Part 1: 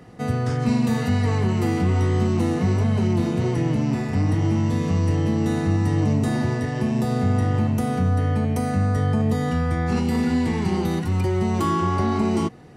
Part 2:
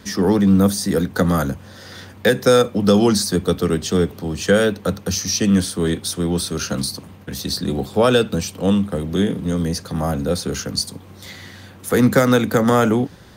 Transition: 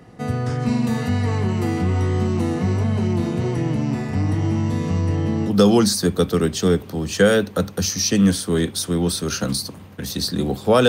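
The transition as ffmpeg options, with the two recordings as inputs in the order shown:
-filter_complex "[0:a]asettb=1/sr,asplit=3[a][b][c];[a]atrim=end=5.014[d];[b]atrim=start=5.01:end=5.52,asetpts=PTS-STARTPTS,afade=t=in:d=0.004:c=qsin,afade=t=out:st=0.506:d=0.004:c=qsin,highshelf=f=7.1k:g=-6.5[e];[c]atrim=start=5.516[f];[d][e]acrossfade=d=0.004:c1=hsin:c2=qsin[g];[g][f]acrossfade=d=0.004:c1=qsin:c2=hsin,apad=whole_dur=10.88,atrim=end=10.88,atrim=end=5.52,asetpts=PTS-STARTPTS[h];[1:a]atrim=start=2.73:end=8.17,asetpts=PTS-STARTPTS[i];[h][i]acrossfade=d=0.08:c1=tri:c2=tri"

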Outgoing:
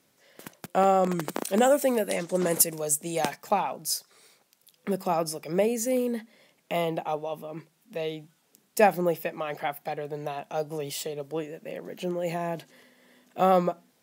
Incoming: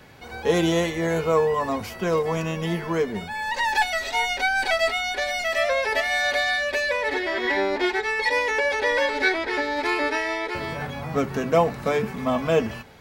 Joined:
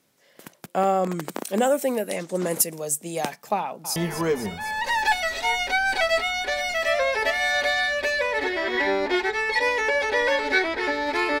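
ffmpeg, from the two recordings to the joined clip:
-filter_complex "[0:a]apad=whole_dur=11.4,atrim=end=11.4,atrim=end=3.962[a];[1:a]atrim=start=2.658:end=10.1[b];[a][b]acrossfade=d=0.004:c1=hsin:c2=hsin,asplit=2[c][d];[d]afade=t=in:st=3.59:d=0.01,afade=t=out:st=3.96:d=0.01,aecho=0:1:250|500|750|1000|1250|1500|1750|2000|2250|2500:0.334965|0.234476|0.164133|0.114893|0.0804252|0.0562976|0.0394083|0.0275858|0.0193101|0.0135171[e];[c][e]amix=inputs=2:normalize=0"

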